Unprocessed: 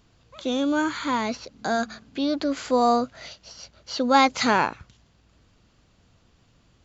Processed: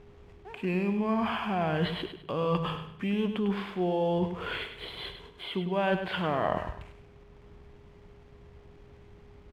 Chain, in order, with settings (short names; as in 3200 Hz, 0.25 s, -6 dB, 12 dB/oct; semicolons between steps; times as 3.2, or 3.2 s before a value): LPF 4500 Hz 24 dB/oct; reverse; compressor 6:1, threshold -34 dBFS, peak gain reduction 20 dB; reverse; whine 570 Hz -60 dBFS; backlash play -60 dBFS; wide varispeed 0.719×; on a send: feedback echo 0.101 s, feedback 33%, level -8.5 dB; on the sum: gain +7 dB